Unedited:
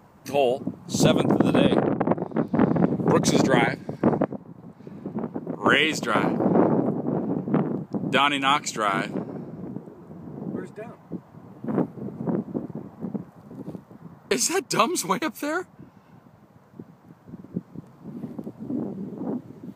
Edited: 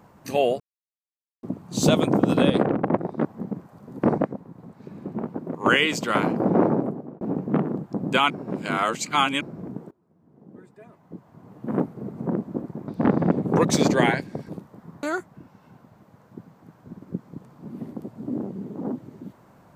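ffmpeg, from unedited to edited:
ffmpeg -i in.wav -filter_complex "[0:a]asplit=11[link_01][link_02][link_03][link_04][link_05][link_06][link_07][link_08][link_09][link_10][link_11];[link_01]atrim=end=0.6,asetpts=PTS-STARTPTS,afade=type=out:start_time=0.596:duration=0.004:curve=hsin,apad=pad_dur=0.83[link_12];[link_02]atrim=start=0.6:end=2.422,asetpts=PTS-STARTPTS,afade=type=in:duration=0.004:curve=hsin[link_13];[link_03]atrim=start=12.878:end=13.662[link_14];[link_04]atrim=start=4.028:end=7.21,asetpts=PTS-STARTPTS,afade=type=out:start_time=2.702:duration=0.48[link_15];[link_05]atrim=start=7.21:end=8.302,asetpts=PTS-STARTPTS,afade=type=in:duration=0.004:curve=hsin[link_16];[link_06]atrim=start=8.298:end=9.412,asetpts=PTS-STARTPTS,areverse[link_17];[link_07]atrim=start=9.408:end=9.91,asetpts=PTS-STARTPTS,afade=type=out:start_time=0.498:duration=0.004:curve=hsin:silence=0.0707946[link_18];[link_08]atrim=start=9.91:end=12.882,asetpts=PTS-STARTPTS,afade=type=in:duration=1.79:curve=qua:silence=0.0707946[link_19];[link_09]atrim=start=2.418:end=4.032[link_20];[link_10]atrim=start=13.658:end=14.202[link_21];[link_11]atrim=start=15.448[link_22];[link_12][link_13]concat=n=2:v=0:a=1[link_23];[link_23][link_14]acrossfade=duration=0.004:curve1=hsin:curve2=hsin[link_24];[link_15][link_16]concat=n=2:v=0:a=1[link_25];[link_24][link_25]acrossfade=duration=0.004:curve1=hsin:curve2=hsin[link_26];[link_26][link_17]acrossfade=duration=0.004:curve1=hsin:curve2=hsin[link_27];[link_18][link_19]concat=n=2:v=0:a=1[link_28];[link_27][link_28]acrossfade=duration=0.004:curve1=hsin:curve2=hsin[link_29];[link_29][link_20]acrossfade=duration=0.004:curve1=hsin:curve2=hsin[link_30];[link_30][link_21]acrossfade=duration=0.004:curve1=hsin:curve2=hsin[link_31];[link_31][link_22]acrossfade=duration=0.004:curve1=hsin:curve2=hsin" out.wav

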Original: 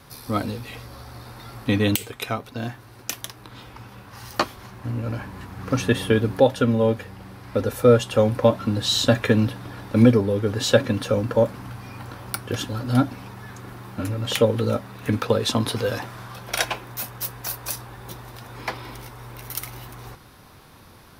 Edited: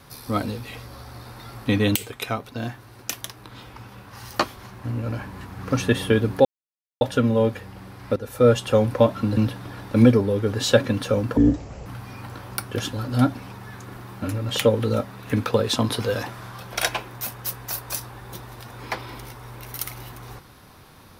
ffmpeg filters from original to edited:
ffmpeg -i in.wav -filter_complex "[0:a]asplit=6[link_01][link_02][link_03][link_04][link_05][link_06];[link_01]atrim=end=6.45,asetpts=PTS-STARTPTS,afade=type=out:start_time=6.446:duration=0.004:curve=hsin,apad=pad_dur=0.56[link_07];[link_02]atrim=start=6.45:end=7.6,asetpts=PTS-STARTPTS,afade=type=in:duration=0.004:curve=hsin,afade=type=out:start_time=1.146:duration=0.004:curve=hsin:silence=0.199526[link_08];[link_03]atrim=start=7.6:end=8.812,asetpts=PTS-STARTPTS,afade=type=in:duration=0.37:silence=0.199526[link_09];[link_04]atrim=start=9.368:end=11.374[link_10];[link_05]atrim=start=11.37:end=11.62,asetpts=PTS-STARTPTS,asetrate=22491,aresample=44100[link_11];[link_06]atrim=start=11.616[link_12];[link_07][link_08][link_09]concat=n=3:v=0:a=1[link_13];[link_13][link_10]acrossfade=duration=0.004:curve1=hsin:curve2=hsin[link_14];[link_14][link_11]acrossfade=duration=0.004:curve1=hsin:curve2=hsin[link_15];[link_15][link_12]acrossfade=duration=0.004:curve1=hsin:curve2=hsin" out.wav

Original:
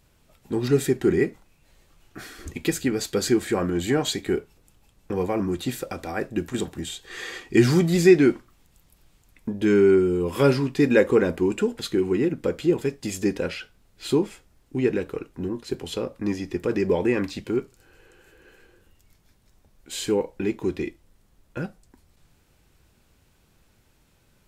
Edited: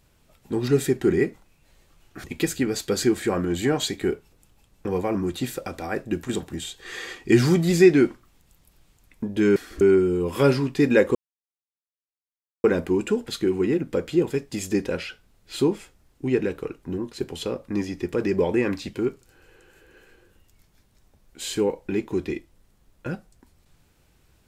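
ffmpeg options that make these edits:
ffmpeg -i in.wav -filter_complex "[0:a]asplit=5[link_01][link_02][link_03][link_04][link_05];[link_01]atrim=end=2.242[link_06];[link_02]atrim=start=2.488:end=9.812[link_07];[link_03]atrim=start=2.238:end=2.492[link_08];[link_04]atrim=start=9.808:end=11.15,asetpts=PTS-STARTPTS,afade=type=out:start_time=1.338:duration=0.004:curve=hsin,apad=pad_dur=1.49[link_09];[link_05]atrim=start=11.15,asetpts=PTS-STARTPTS,afade=type=in:duration=0.004:curve=hsin[link_10];[link_06][link_07]acrossfade=duration=0.004:curve1=hsin:curve2=hsin[link_11];[link_11][link_08]acrossfade=duration=0.004:curve1=hsin:curve2=hsin[link_12];[link_09][link_10]concat=n=2:v=0:a=1[link_13];[link_12][link_13]acrossfade=duration=0.004:curve1=hsin:curve2=hsin" out.wav

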